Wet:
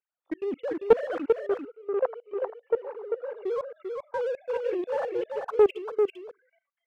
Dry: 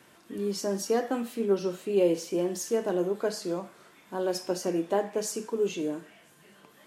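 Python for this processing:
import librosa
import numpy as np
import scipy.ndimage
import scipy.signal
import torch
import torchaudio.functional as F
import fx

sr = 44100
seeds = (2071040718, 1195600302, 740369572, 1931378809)

y = fx.sine_speech(x, sr)
y = fx.noise_reduce_blind(y, sr, reduce_db=24)
y = fx.level_steps(y, sr, step_db=22)
y = fx.leveller(y, sr, passes=1)
y = fx.rider(y, sr, range_db=4, speed_s=0.5)
y = fx.bandpass_q(y, sr, hz=790.0, q=1.9, at=(1.28, 3.37))
y = y + 10.0 ** (-5.0 / 20.0) * np.pad(y, (int(394 * sr / 1000.0), 0))[:len(y)]
y = fx.doppler_dist(y, sr, depth_ms=0.18)
y = F.gain(torch.from_numpy(y), 8.5).numpy()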